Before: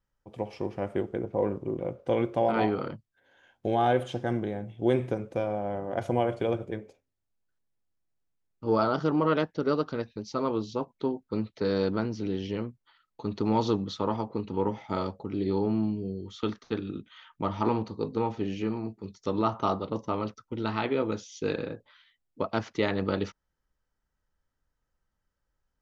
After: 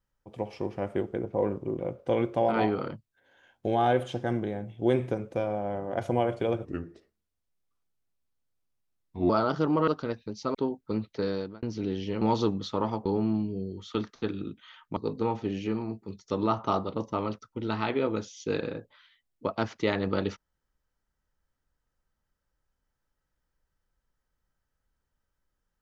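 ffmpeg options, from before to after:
-filter_complex "[0:a]asplit=9[a][b][c][d][e][f][g][h][i];[a]atrim=end=6.654[j];[b]atrim=start=6.65:end=8.74,asetpts=PTS-STARTPTS,asetrate=34839,aresample=44100[k];[c]atrim=start=8.736:end=9.322[l];[d]atrim=start=9.768:end=10.442[m];[e]atrim=start=10.968:end=12.05,asetpts=PTS-STARTPTS,afade=t=out:st=0.602:d=0.48[n];[f]atrim=start=12.05:end=12.642,asetpts=PTS-STARTPTS,afade=t=in:d=0.004:c=hsin[o];[g]atrim=start=13.478:end=14.322[p];[h]atrim=start=15.538:end=17.452[q];[i]atrim=start=17.918[r];[j][k]acrossfade=d=0.004:c1=hsin:c2=hsin[s];[s][l]acrossfade=d=0.004:c1=hsin:c2=hsin[t];[t][m]acrossfade=d=0.004:c1=hsin:c2=hsin[u];[n][o]concat=n=2:v=0:a=1[v];[u][v]acrossfade=d=0.004:c1=hsin:c2=hsin[w];[w][p]acrossfade=d=0.004:c1=hsin:c2=hsin[x];[x][q]acrossfade=d=0.004:c1=hsin:c2=hsin[y];[y][r]acrossfade=d=0.004:c1=hsin:c2=hsin"

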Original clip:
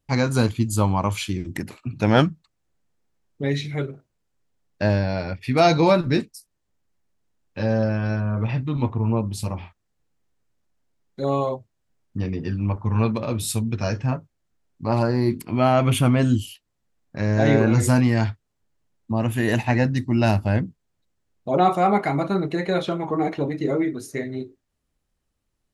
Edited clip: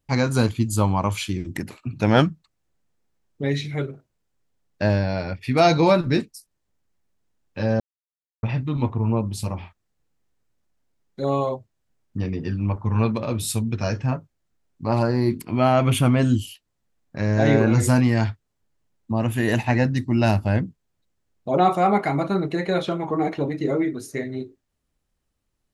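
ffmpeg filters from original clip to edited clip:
-filter_complex "[0:a]asplit=3[a][b][c];[a]atrim=end=7.8,asetpts=PTS-STARTPTS,afade=t=out:st=7.796:d=0.004:c=hsin[d];[b]atrim=start=7.8:end=8.43,asetpts=PTS-STARTPTS,volume=0[e];[c]atrim=start=8.43,asetpts=PTS-STARTPTS,afade=t=in:d=0.004:c=hsin[f];[d][e][f]concat=n=3:v=0:a=1"

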